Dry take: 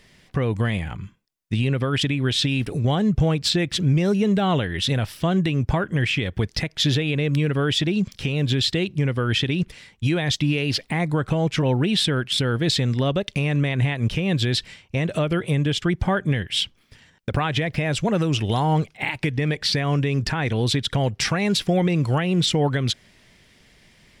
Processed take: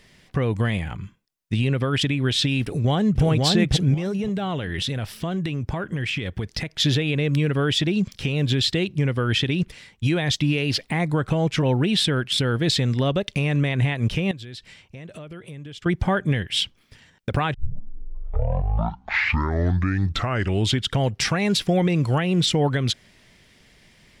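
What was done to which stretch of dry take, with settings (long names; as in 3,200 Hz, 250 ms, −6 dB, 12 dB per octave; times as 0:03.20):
0:02.62–0:03.23: delay throw 530 ms, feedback 25%, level −1.5 dB
0:03.94–0:06.80: downward compressor, threshold −22 dBFS
0:14.31–0:15.86: downward compressor 2.5 to 1, threshold −43 dBFS
0:17.54: tape start 3.49 s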